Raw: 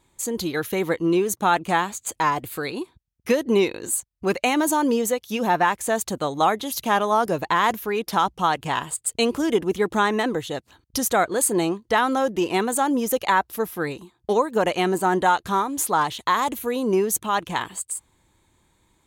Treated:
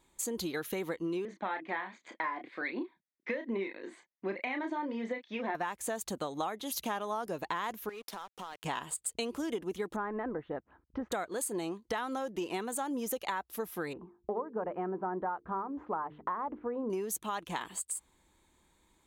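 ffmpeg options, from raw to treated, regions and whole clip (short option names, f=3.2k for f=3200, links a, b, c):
-filter_complex "[0:a]asettb=1/sr,asplit=3[a][b][c];[a]atrim=end=1.254[d];[b]atrim=start=1.25:end=5.55,asetpts=PTS-STARTPTS,afade=t=in:d=0.004:c=qsin,afade=t=out:st=4.296:d=0.004:c=qsin,aphaser=in_gain=1:out_gain=1:delay=2.9:decay=0.38:speed=1.3:type=triangular,highpass=f=240:w=0.5412,highpass=f=240:w=1.3066,equalizer=f=440:t=q:w=4:g=-9,equalizer=f=790:t=q:w=4:g=-5,equalizer=f=1.3k:t=q:w=4:g=-8,equalizer=f=2k:t=q:w=4:g=8,equalizer=f=2.8k:t=q:w=4:g=-10,lowpass=f=3.1k:w=0.5412,lowpass=f=3.1k:w=1.3066,asplit=2[e][f];[f]adelay=31,volume=-7dB[g];[e][g]amix=inputs=2:normalize=0,atrim=end_sample=189630[h];[c]atrim=start=5.546[i];[d][h]acrossfade=d=0.004:c1=hsin:c2=qsin[j];[j][i]acrossfade=d=0.004:c1=qsin:c2=hsin,asettb=1/sr,asplit=3[k][l][m];[k]atrim=end=7.894[n];[l]atrim=start=7.89:end=8.64,asetpts=PTS-STARTPTS,afade=t=in:d=0.004:c=qsin,afade=t=out:st=0.746:d=0.004:c=qsin,highpass=250,acompressor=threshold=-32dB:ratio=12:attack=3.2:release=140:knee=1:detection=peak,aeval=exprs='sgn(val(0))*max(abs(val(0))-0.00501,0)':c=same[o];[m]atrim=start=8.636[p];[n][o]acrossfade=d=0.004:c1=hsin:c2=qsin[q];[q][p]acrossfade=d=0.004:c1=qsin:c2=hsin,asettb=1/sr,asplit=3[r][s][t];[r]atrim=end=9.964[u];[s]atrim=start=9.96:end=11.12,asetpts=PTS-STARTPTS,afade=t=in:d=0.004:c=qsin,afade=t=out:st=1.156:d=0.004:c=qsin,lowpass=f=1.7k:w=0.5412,lowpass=f=1.7k:w=1.3066,tremolo=f=200:d=0.261[v];[t]atrim=start=11.116[w];[u][v]acrossfade=d=0.004:c1=hsin:c2=qsin[x];[x][w]acrossfade=d=0.004:c1=qsin:c2=hsin,asettb=1/sr,asplit=3[y][z][aa];[y]atrim=end=13.934[ab];[z]atrim=start=13.93:end=16.9,asetpts=PTS-STARTPTS,afade=t=in:d=0.004:c=qsin,afade=t=out:st=2.966:d=0.004:c=qsin,lowpass=f=1.4k:w=0.5412,lowpass=f=1.4k:w=1.3066,bandreject=f=50:t=h:w=6,bandreject=f=100:t=h:w=6,bandreject=f=150:t=h:w=6,bandreject=f=200:t=h:w=6,bandreject=f=250:t=h:w=6,bandreject=f=300:t=h:w=6,bandreject=f=350:t=h:w=6,bandreject=f=400:t=h:w=6,bandreject=f=450:t=h:w=6[ac];[aa]atrim=start=16.896[ad];[ab][ac]acrossfade=d=0.004:c1=hsin:c2=qsin[ae];[ae][ad]acrossfade=d=0.004:c1=qsin:c2=hsin,equalizer=f=110:t=o:w=0.46:g=-14,acompressor=threshold=-28dB:ratio=6,volume=-4.5dB"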